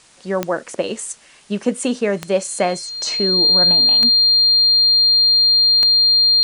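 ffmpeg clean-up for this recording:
ffmpeg -i in.wav -af "adeclick=threshold=4,bandreject=frequency=4200:width=30,agate=range=-21dB:threshold=-34dB" out.wav

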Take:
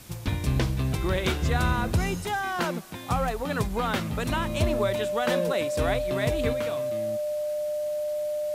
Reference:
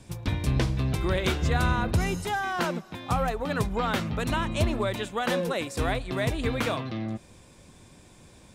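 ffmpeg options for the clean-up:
ffmpeg -i in.wav -af "bandreject=frequency=600:width=30,afwtdn=0.0035,asetnsamples=nb_out_samples=441:pad=0,asendcmd='6.53 volume volume 7.5dB',volume=0dB" out.wav

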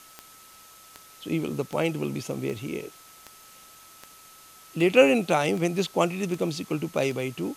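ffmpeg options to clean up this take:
ffmpeg -i in.wav -af "adeclick=threshold=4,bandreject=frequency=1300:width=30,afftdn=noise_reduction=21:noise_floor=-51" out.wav

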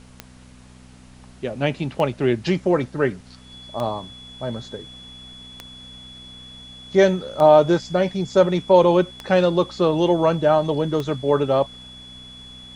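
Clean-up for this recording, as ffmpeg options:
ffmpeg -i in.wav -af "adeclick=threshold=4,bandreject=frequency=62.6:width_type=h:width=4,bandreject=frequency=125.2:width_type=h:width=4,bandreject=frequency=187.8:width_type=h:width=4,bandreject=frequency=250.4:width_type=h:width=4,bandreject=frequency=3400:width=30,agate=range=-21dB:threshold=-37dB" out.wav

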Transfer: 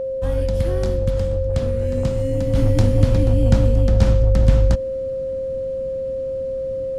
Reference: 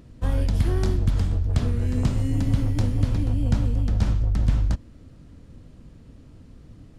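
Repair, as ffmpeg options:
ffmpeg -i in.wav -af "bandreject=frequency=530:width=30,asetnsamples=nb_out_samples=441:pad=0,asendcmd='2.55 volume volume -6.5dB',volume=0dB" out.wav

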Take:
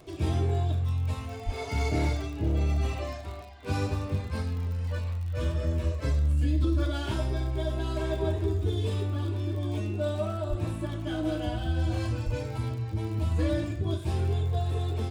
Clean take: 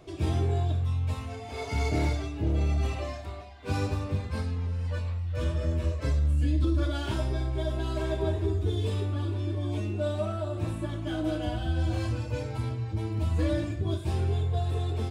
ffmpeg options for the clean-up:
ffmpeg -i in.wav -filter_complex "[0:a]adeclick=threshold=4,asplit=3[link_01][link_02][link_03];[link_01]afade=type=out:start_time=1.45:duration=0.02[link_04];[link_02]highpass=frequency=140:width=0.5412,highpass=frequency=140:width=1.3066,afade=type=in:start_time=1.45:duration=0.02,afade=type=out:start_time=1.57:duration=0.02[link_05];[link_03]afade=type=in:start_time=1.57:duration=0.02[link_06];[link_04][link_05][link_06]amix=inputs=3:normalize=0,asplit=3[link_07][link_08][link_09];[link_07]afade=type=out:start_time=10.49:duration=0.02[link_10];[link_08]highpass=frequency=140:width=0.5412,highpass=frequency=140:width=1.3066,afade=type=in:start_time=10.49:duration=0.02,afade=type=out:start_time=10.61:duration=0.02[link_11];[link_09]afade=type=in:start_time=10.61:duration=0.02[link_12];[link_10][link_11][link_12]amix=inputs=3:normalize=0,asplit=3[link_13][link_14][link_15];[link_13]afade=type=out:start_time=12.25:duration=0.02[link_16];[link_14]highpass=frequency=140:width=0.5412,highpass=frequency=140:width=1.3066,afade=type=in:start_time=12.25:duration=0.02,afade=type=out:start_time=12.37:duration=0.02[link_17];[link_15]afade=type=in:start_time=12.37:duration=0.02[link_18];[link_16][link_17][link_18]amix=inputs=3:normalize=0" out.wav

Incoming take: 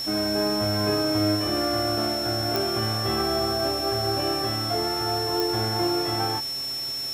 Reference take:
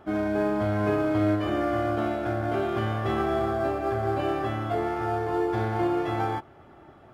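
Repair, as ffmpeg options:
ffmpeg -i in.wav -af "adeclick=threshold=4,bandreject=frequency=131.8:width_type=h:width=4,bandreject=frequency=263.6:width_type=h:width=4,bandreject=frequency=395.4:width_type=h:width=4,bandreject=frequency=527.2:width_type=h:width=4,bandreject=frequency=659:width_type=h:width=4,bandreject=frequency=5400:width=30,afftdn=noise_reduction=19:noise_floor=-30" out.wav

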